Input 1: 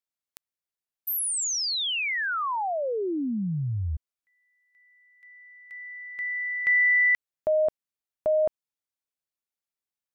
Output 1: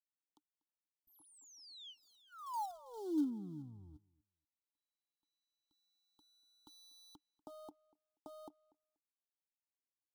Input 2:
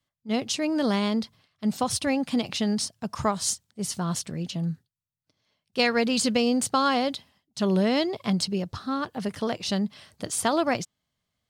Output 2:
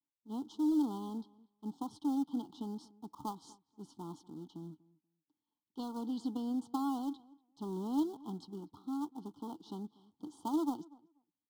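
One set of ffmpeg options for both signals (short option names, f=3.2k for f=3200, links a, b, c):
-filter_complex "[0:a]aeval=exprs='if(lt(val(0),0),0.447*val(0),val(0))':c=same,aeval=exprs='0.282*(cos(1*acos(clip(val(0)/0.282,-1,1)))-cos(1*PI/2))+0.00224*(cos(3*acos(clip(val(0)/0.282,-1,1)))-cos(3*PI/2))+0.00178*(cos(8*acos(clip(val(0)/0.282,-1,1)))-cos(8*PI/2))':c=same,asplit=3[a][b][c];[a]bandpass=f=300:t=q:w=8,volume=0dB[d];[b]bandpass=f=870:t=q:w=8,volume=-6dB[e];[c]bandpass=f=2.24k:t=q:w=8,volume=-9dB[f];[d][e][f]amix=inputs=3:normalize=0,acrossover=split=420|1300[g][h][i];[h]acrusher=bits=2:mode=log:mix=0:aa=0.000001[j];[g][j][i]amix=inputs=3:normalize=0,asuperstop=centerf=2100:order=20:qfactor=1.3,asplit=2[k][l];[l]adelay=241,lowpass=f=2.4k:p=1,volume=-22.5dB,asplit=2[m][n];[n]adelay=241,lowpass=f=2.4k:p=1,volume=0.15[o];[k][m][o]amix=inputs=3:normalize=0,volume=1dB"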